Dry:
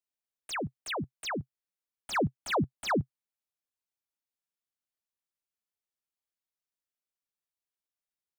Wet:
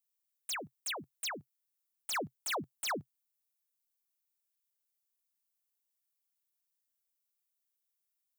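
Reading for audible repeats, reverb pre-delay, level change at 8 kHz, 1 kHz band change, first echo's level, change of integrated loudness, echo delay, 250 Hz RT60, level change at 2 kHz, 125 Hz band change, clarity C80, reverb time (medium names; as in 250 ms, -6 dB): no echo, no reverb, +4.5 dB, -6.5 dB, no echo, -5.0 dB, no echo, no reverb, -4.0 dB, -17.0 dB, no reverb, no reverb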